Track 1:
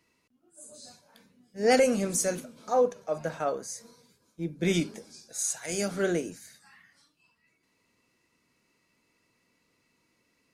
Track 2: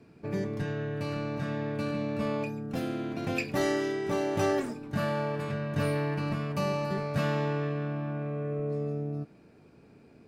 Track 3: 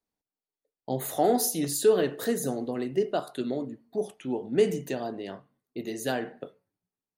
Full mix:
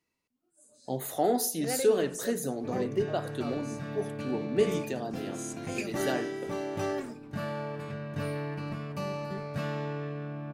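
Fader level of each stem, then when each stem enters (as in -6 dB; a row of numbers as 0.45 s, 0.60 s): -12.0 dB, -5.0 dB, -3.0 dB; 0.00 s, 2.40 s, 0.00 s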